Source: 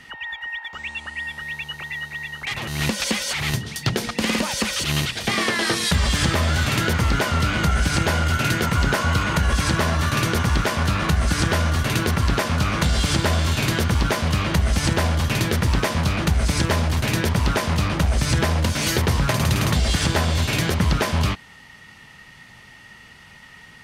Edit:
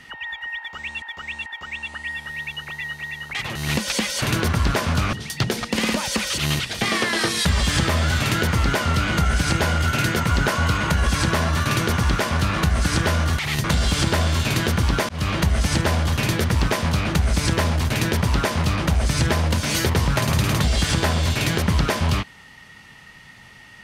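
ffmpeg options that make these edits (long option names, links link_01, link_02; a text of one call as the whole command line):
ffmpeg -i in.wav -filter_complex "[0:a]asplit=8[link_01][link_02][link_03][link_04][link_05][link_06][link_07][link_08];[link_01]atrim=end=1.022[link_09];[link_02]atrim=start=0.578:end=1.022[link_10];[link_03]atrim=start=0.578:end=3.342[link_11];[link_04]atrim=start=11.848:end=12.762[link_12];[link_05]atrim=start=3.588:end=11.852[link_13];[link_06]atrim=start=3.338:end=3.592[link_14];[link_07]atrim=start=12.758:end=14.21,asetpts=PTS-STARTPTS,afade=type=out:start_time=1.448:duration=0.004:curve=hsin[link_15];[link_08]atrim=start=14.21,asetpts=PTS-STARTPTS,afade=type=in:duration=0.26:curve=qsin[link_16];[link_09][link_10]acrossfade=duration=0.004:curve1=hsin:curve2=hsin[link_17];[link_17][link_11]acrossfade=duration=0.004:curve1=hsin:curve2=hsin[link_18];[link_18][link_12]acrossfade=duration=0.004:curve1=hsin:curve2=hsin[link_19];[link_19][link_13]acrossfade=duration=0.004:curve1=hsin:curve2=hsin[link_20];[link_20][link_14]acrossfade=duration=0.004:curve1=hsin:curve2=hsin[link_21];[link_15][link_16]concat=n=2:v=0:a=1[link_22];[link_21][link_22]acrossfade=duration=0.004:curve1=hsin:curve2=hsin" out.wav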